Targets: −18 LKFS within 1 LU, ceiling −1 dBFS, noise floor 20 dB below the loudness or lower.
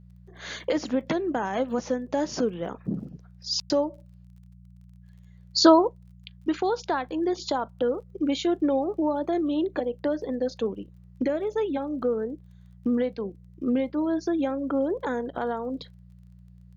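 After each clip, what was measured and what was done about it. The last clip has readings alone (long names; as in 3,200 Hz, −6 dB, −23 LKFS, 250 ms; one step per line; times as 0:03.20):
crackle rate 26 per second; mains hum 60 Hz; hum harmonics up to 180 Hz; level of the hum −47 dBFS; integrated loudness −27.0 LKFS; sample peak −6.0 dBFS; target loudness −18.0 LKFS
→ click removal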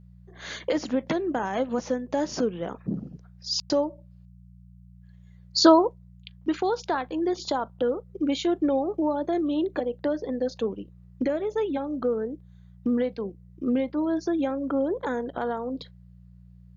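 crackle rate 0.060 per second; mains hum 60 Hz; hum harmonics up to 180 Hz; level of the hum −47 dBFS
→ hum removal 60 Hz, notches 3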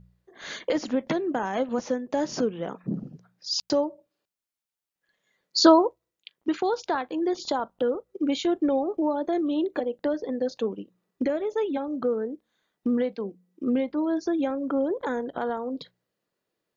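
mains hum none found; integrated loudness −27.0 LKFS; sample peak −6.0 dBFS; target loudness −18.0 LKFS
→ level +9 dB
brickwall limiter −1 dBFS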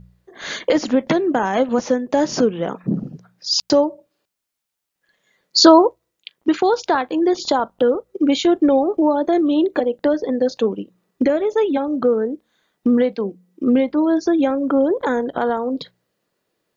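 integrated loudness −18.5 LKFS; sample peak −1.0 dBFS; background noise floor −78 dBFS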